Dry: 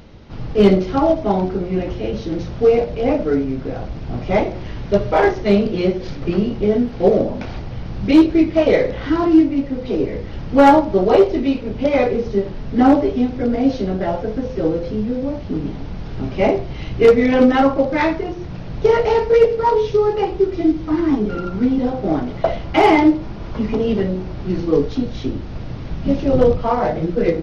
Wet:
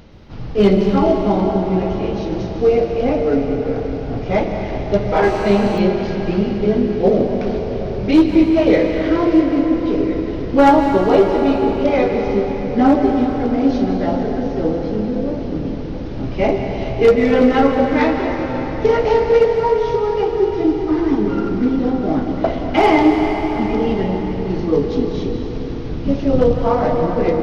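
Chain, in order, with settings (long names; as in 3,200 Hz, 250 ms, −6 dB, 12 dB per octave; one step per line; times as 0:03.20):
0:19.57–0:20.42: downward compressor, threshold −15 dBFS, peak gain reduction 4.5 dB
dense smooth reverb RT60 4.8 s, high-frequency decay 0.75×, pre-delay 115 ms, DRR 3 dB
0:05.24–0:05.78: phone interference −29 dBFS
level −1 dB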